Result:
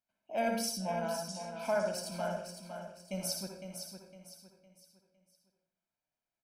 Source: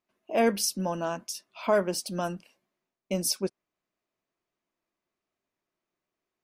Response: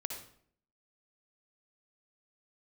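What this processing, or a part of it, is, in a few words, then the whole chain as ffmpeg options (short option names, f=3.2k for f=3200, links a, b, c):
microphone above a desk: -filter_complex "[0:a]aecho=1:1:1.3:0.72[a];[1:a]atrim=start_sample=2205[b];[a][b]afir=irnorm=-1:irlink=0,asettb=1/sr,asplit=3[c][d][e];[c]atrim=end=0.774[f];[d]atrim=start=0.77:end=1.93,asetpts=PTS-STARTPTS,afade=t=in:d=0.004:c=qsin,afade=t=out:st=1.156:d=0.004:c=qsin,lowpass=f=9.7k:w=0.5412,lowpass=f=9.7k:w=1.3066[g];[e]atrim=start=1.926[h];[f][g]acrossfade=d=0.004:c1=hsin:c2=qsin[i];[i][h]acrossfade=d=0.004:c1=qsin:c2=hsin,aecho=1:1:508|1016|1524|2032:0.398|0.143|0.0516|0.0186,volume=-9dB"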